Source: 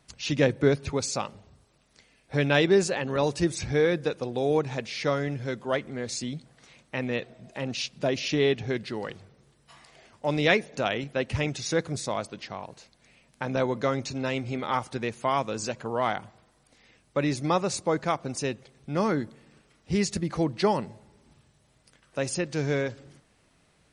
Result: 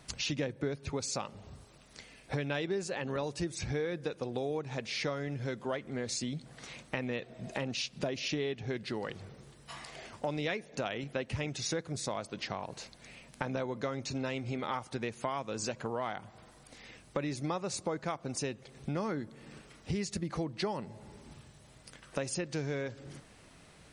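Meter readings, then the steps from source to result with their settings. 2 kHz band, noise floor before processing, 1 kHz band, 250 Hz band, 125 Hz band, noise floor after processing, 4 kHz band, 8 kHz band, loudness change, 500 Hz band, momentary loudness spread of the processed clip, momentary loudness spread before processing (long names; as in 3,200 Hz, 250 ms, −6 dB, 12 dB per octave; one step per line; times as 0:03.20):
−8.5 dB, −65 dBFS, −9.0 dB, −8.0 dB, −7.5 dB, −58 dBFS, −6.0 dB, −4.5 dB, −8.5 dB, −9.5 dB, 17 LU, 12 LU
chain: downward compressor 5 to 1, threshold −41 dBFS, peak gain reduction 21.5 dB
level +7 dB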